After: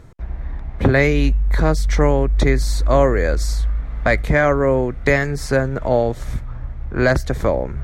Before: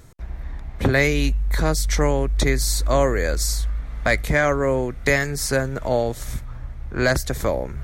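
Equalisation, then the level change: low-pass 1.8 kHz 6 dB/octave; +4.5 dB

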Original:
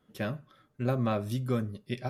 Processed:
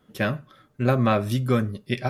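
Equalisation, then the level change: dynamic bell 1.9 kHz, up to +5 dB, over -47 dBFS, Q 0.78; +7.5 dB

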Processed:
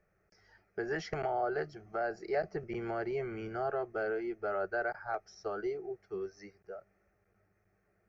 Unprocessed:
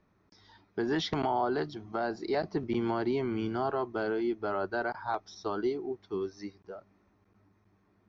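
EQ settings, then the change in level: peaking EQ 95 Hz -7 dB 0.71 oct; static phaser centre 990 Hz, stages 6; 0.0 dB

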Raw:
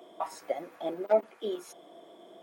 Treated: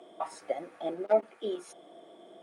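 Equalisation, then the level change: distance through air 73 m; peaking EQ 9.3 kHz +13.5 dB 0.38 oct; band-stop 1 kHz, Q 11; 0.0 dB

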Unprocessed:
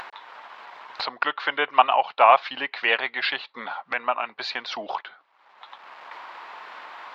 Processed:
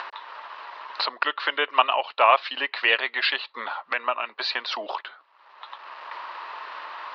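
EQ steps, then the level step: dynamic bell 960 Hz, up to -7 dB, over -32 dBFS, Q 0.98; cabinet simulation 490–4700 Hz, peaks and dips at 490 Hz -3 dB, 760 Hz -9 dB, 1.5 kHz -5 dB, 2.2 kHz -7 dB, 3.4 kHz -5 dB; +7.5 dB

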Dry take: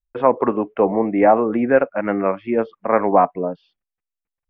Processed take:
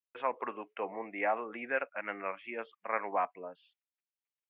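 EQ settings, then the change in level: band-pass filter 2.8 kHz, Q 1.9; distance through air 190 m; 0.0 dB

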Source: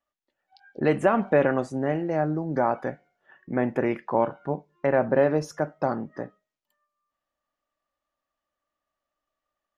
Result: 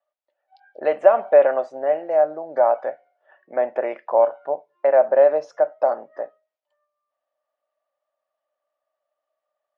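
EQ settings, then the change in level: resonant high-pass 610 Hz, resonance Q 4.9; low-pass 5.1 kHz 12 dB/octave; distance through air 55 m; -2.5 dB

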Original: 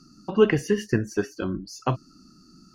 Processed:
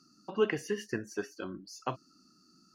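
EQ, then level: high-pass 400 Hz 6 dB/octave; -7.0 dB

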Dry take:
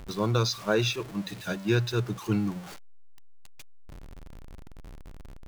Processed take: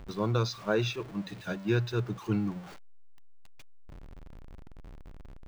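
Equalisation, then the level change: peaking EQ 14 kHz -10.5 dB 2 oct; -2.5 dB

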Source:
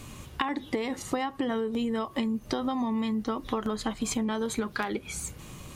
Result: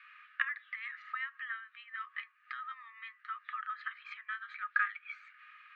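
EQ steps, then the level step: rippled Chebyshev high-pass 1.2 kHz, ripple 9 dB; Chebyshev low-pass 2.4 kHz, order 4; +7.5 dB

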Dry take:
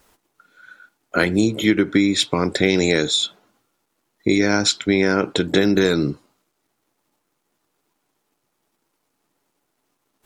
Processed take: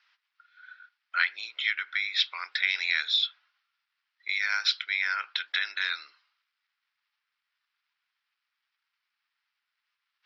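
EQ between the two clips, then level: high-pass 1.5 kHz 24 dB/octave; elliptic low-pass 5.2 kHz, stop band 60 dB; distance through air 140 m; 0.0 dB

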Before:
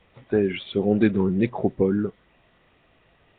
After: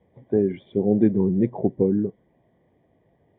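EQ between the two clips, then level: boxcar filter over 33 samples; high-pass 92 Hz; distance through air 78 m; +2.0 dB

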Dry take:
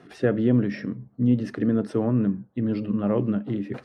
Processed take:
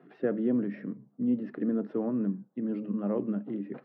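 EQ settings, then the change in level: elliptic high-pass 150 Hz, stop band 40 dB; distance through air 360 m; treble shelf 2.9 kHz -7 dB; -5.0 dB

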